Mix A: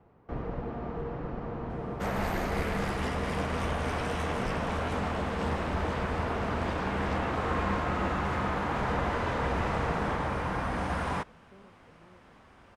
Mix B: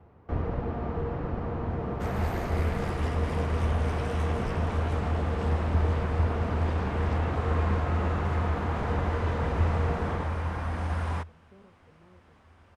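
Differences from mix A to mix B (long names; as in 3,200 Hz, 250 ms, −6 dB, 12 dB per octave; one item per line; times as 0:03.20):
first sound +3.0 dB
second sound −4.0 dB
master: add parametric band 82 Hz +14.5 dB 0.34 octaves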